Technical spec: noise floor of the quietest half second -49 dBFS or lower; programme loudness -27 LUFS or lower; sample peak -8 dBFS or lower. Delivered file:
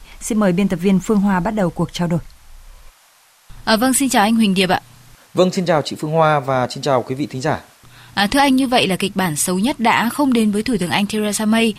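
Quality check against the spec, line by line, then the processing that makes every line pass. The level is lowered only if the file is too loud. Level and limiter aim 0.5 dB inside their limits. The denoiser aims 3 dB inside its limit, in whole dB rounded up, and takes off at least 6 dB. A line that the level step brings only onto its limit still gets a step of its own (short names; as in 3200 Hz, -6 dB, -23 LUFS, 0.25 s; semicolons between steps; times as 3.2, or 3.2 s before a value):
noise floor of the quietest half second -52 dBFS: OK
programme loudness -17.0 LUFS: fail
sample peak -2.0 dBFS: fail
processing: gain -10.5 dB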